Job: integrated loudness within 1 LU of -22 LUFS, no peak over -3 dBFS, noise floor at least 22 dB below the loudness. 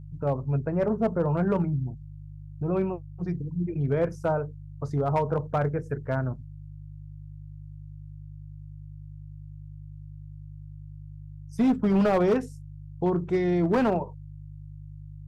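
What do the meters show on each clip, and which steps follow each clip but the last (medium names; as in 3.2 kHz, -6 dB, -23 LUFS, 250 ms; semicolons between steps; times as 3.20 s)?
clipped samples 0.9%; clipping level -17.5 dBFS; hum 50 Hz; highest harmonic 150 Hz; hum level -40 dBFS; loudness -27.0 LUFS; peak level -17.5 dBFS; loudness target -22.0 LUFS
-> clip repair -17.5 dBFS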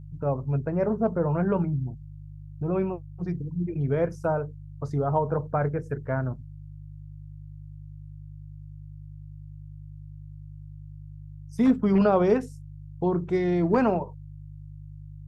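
clipped samples 0.0%; hum 50 Hz; highest harmonic 150 Hz; hum level -40 dBFS
-> de-hum 50 Hz, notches 3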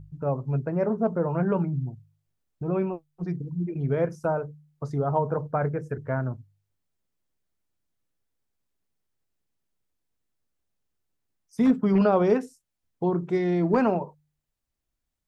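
hum not found; loudness -26.5 LUFS; peak level -9.5 dBFS; loudness target -22.0 LUFS
-> trim +4.5 dB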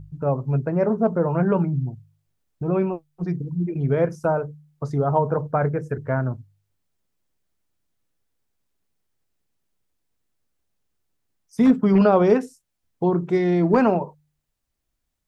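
loudness -22.0 LUFS; peak level -5.0 dBFS; noise floor -78 dBFS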